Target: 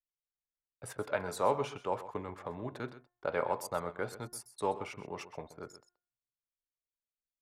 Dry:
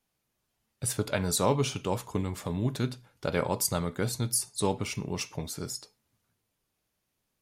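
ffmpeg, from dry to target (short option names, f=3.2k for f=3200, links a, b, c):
-filter_complex "[0:a]acrossover=split=430 2000:gain=0.158 1 0.141[a][b][c];[a][b][c]amix=inputs=3:normalize=0,anlmdn=0.00398,bandreject=f=356:t=h:w=4,bandreject=f=712:t=h:w=4,bandreject=f=1.068k:t=h:w=4,bandreject=f=1.424k:t=h:w=4,bandreject=f=1.78k:t=h:w=4,bandreject=f=2.136k:t=h:w=4,asplit=2[d][e];[e]aecho=0:1:128:0.188[f];[d][f]amix=inputs=2:normalize=0"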